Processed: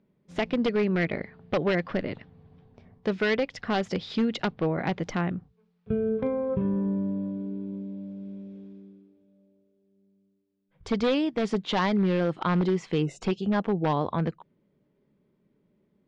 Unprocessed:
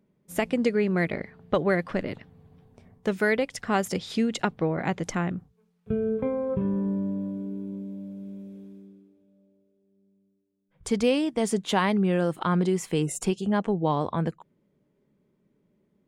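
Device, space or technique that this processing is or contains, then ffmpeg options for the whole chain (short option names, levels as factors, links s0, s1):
synthesiser wavefolder: -af "aeval=exprs='0.133*(abs(mod(val(0)/0.133+3,4)-2)-1)':c=same,lowpass=f=4900:w=0.5412,lowpass=f=4900:w=1.3066"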